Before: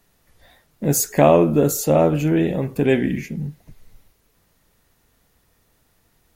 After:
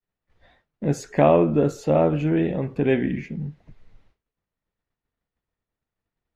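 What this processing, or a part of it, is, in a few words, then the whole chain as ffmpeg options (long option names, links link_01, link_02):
hearing-loss simulation: -af "lowpass=3100,agate=range=-33dB:threshold=-50dB:ratio=3:detection=peak,volume=-3dB"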